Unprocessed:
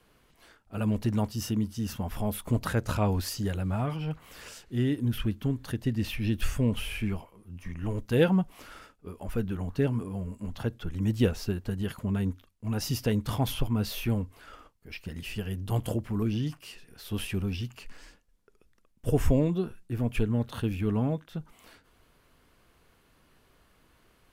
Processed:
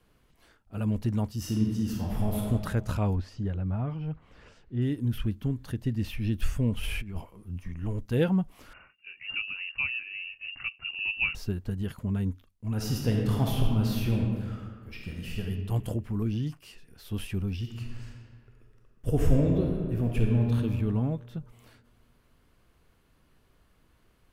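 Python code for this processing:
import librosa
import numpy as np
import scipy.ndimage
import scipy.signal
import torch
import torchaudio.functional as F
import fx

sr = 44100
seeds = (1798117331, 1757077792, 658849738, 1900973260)

y = fx.reverb_throw(x, sr, start_s=1.39, length_s=1.09, rt60_s=1.5, drr_db=-1.5)
y = fx.spacing_loss(y, sr, db_at_10k=24, at=(3.14, 4.81), fade=0.02)
y = fx.over_compress(y, sr, threshold_db=-34.0, ratio=-0.5, at=(6.8, 7.59), fade=0.02)
y = fx.freq_invert(y, sr, carrier_hz=2800, at=(8.73, 11.35))
y = fx.reverb_throw(y, sr, start_s=12.72, length_s=2.68, rt60_s=1.6, drr_db=-1.0)
y = fx.reverb_throw(y, sr, start_s=17.58, length_s=2.97, rt60_s=2.1, drr_db=0.5)
y = fx.low_shelf(y, sr, hz=230.0, db=7.0)
y = F.gain(torch.from_numpy(y), -5.0).numpy()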